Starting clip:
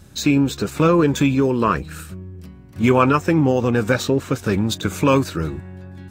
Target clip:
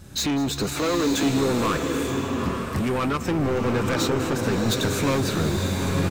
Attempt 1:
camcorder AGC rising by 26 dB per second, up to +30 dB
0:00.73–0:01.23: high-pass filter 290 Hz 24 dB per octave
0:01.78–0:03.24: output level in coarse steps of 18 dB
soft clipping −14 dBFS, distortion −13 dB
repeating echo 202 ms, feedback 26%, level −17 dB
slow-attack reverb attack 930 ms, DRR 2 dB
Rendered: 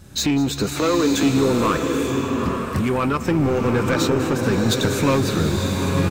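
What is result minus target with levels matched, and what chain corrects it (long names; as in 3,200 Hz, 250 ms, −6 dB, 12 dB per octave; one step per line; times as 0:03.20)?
soft clipping: distortion −6 dB
camcorder AGC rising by 26 dB per second, up to +30 dB
0:00.73–0:01.23: high-pass filter 290 Hz 24 dB per octave
0:01.78–0:03.24: output level in coarse steps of 18 dB
soft clipping −21 dBFS, distortion −7 dB
repeating echo 202 ms, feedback 26%, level −17 dB
slow-attack reverb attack 930 ms, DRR 2 dB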